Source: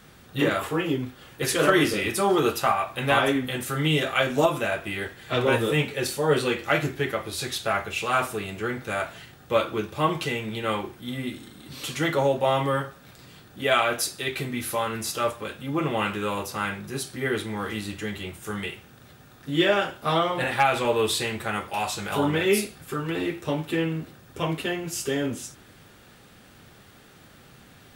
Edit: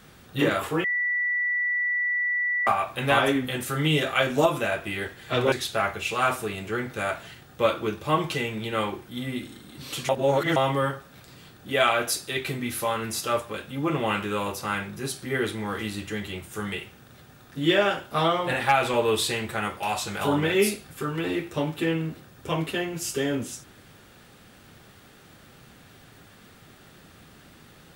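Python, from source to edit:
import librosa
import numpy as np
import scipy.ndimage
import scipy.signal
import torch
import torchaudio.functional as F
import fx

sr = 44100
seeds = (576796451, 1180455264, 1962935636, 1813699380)

y = fx.edit(x, sr, fx.bleep(start_s=0.84, length_s=1.83, hz=1960.0, db=-22.5),
    fx.cut(start_s=5.52, length_s=1.91),
    fx.reverse_span(start_s=12.0, length_s=0.47), tone=tone)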